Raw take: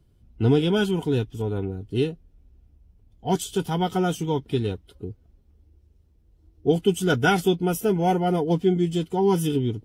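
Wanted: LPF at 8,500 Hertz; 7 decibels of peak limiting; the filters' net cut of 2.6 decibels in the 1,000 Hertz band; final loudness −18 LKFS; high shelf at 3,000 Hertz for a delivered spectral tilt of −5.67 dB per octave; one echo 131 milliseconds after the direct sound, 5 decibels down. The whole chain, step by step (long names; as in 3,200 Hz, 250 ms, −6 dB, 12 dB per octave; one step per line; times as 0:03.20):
low-pass filter 8,500 Hz
parametric band 1,000 Hz −5 dB
high-shelf EQ 3,000 Hz +7 dB
brickwall limiter −14.5 dBFS
single-tap delay 131 ms −5 dB
level +6.5 dB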